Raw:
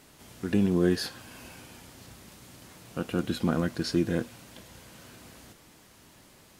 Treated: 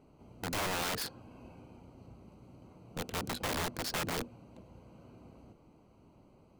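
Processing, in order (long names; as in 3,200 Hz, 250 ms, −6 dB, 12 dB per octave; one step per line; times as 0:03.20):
adaptive Wiener filter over 25 samples
wrap-around overflow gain 27 dB
level −2 dB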